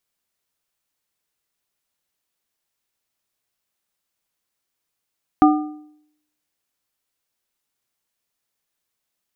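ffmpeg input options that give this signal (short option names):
-f lavfi -i "aevalsrc='0.398*pow(10,-3*t/0.72)*sin(2*PI*302*t)+0.266*pow(10,-3*t/0.547)*sin(2*PI*755*t)+0.178*pow(10,-3*t/0.475)*sin(2*PI*1208*t)':d=1.55:s=44100"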